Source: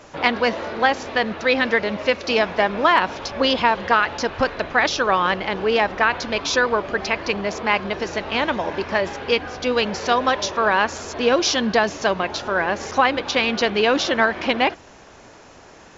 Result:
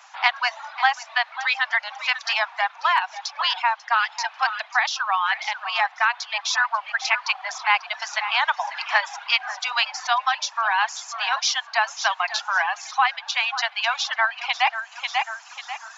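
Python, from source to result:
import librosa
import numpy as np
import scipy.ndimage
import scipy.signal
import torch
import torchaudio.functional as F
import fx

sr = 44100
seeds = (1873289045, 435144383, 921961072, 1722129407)

p1 = scipy.signal.sosfilt(scipy.signal.butter(12, 730.0, 'highpass', fs=sr, output='sos'), x)
p2 = p1 + fx.echo_feedback(p1, sr, ms=542, feedback_pct=32, wet_db=-12.0, dry=0)
p3 = fx.dereverb_blind(p2, sr, rt60_s=1.3)
y = fx.rider(p3, sr, range_db=10, speed_s=0.5)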